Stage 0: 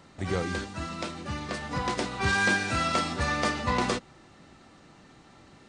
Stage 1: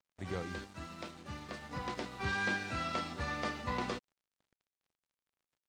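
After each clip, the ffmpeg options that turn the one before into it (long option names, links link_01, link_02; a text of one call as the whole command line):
ffmpeg -i in.wav -filter_complex "[0:a]aeval=exprs='sgn(val(0))*max(abs(val(0))-0.00501,0)':channel_layout=same,acrossover=split=5600[link_01][link_02];[link_02]acompressor=threshold=-52dB:ratio=4:attack=1:release=60[link_03];[link_01][link_03]amix=inputs=2:normalize=0,volume=-9dB" out.wav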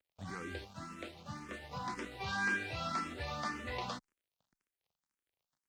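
ffmpeg -i in.wav -filter_complex "[0:a]acrossover=split=710|3200[link_01][link_02][link_03];[link_01]alimiter=level_in=12dB:limit=-24dB:level=0:latency=1,volume=-12dB[link_04];[link_04][link_02][link_03]amix=inputs=3:normalize=0,asplit=2[link_05][link_06];[link_06]afreqshift=1.9[link_07];[link_05][link_07]amix=inputs=2:normalize=1,volume=2dB" out.wav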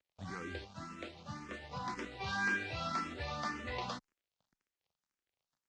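ffmpeg -i in.wav -af "lowpass=frequency=7400:width=0.5412,lowpass=frequency=7400:width=1.3066" out.wav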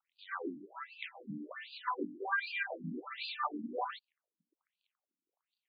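ffmpeg -i in.wav -af "afftfilt=real='re*between(b*sr/1024,230*pow(3500/230,0.5+0.5*sin(2*PI*1.3*pts/sr))/1.41,230*pow(3500/230,0.5+0.5*sin(2*PI*1.3*pts/sr))*1.41)':imag='im*between(b*sr/1024,230*pow(3500/230,0.5+0.5*sin(2*PI*1.3*pts/sr))/1.41,230*pow(3500/230,0.5+0.5*sin(2*PI*1.3*pts/sr))*1.41)':win_size=1024:overlap=0.75,volume=8.5dB" out.wav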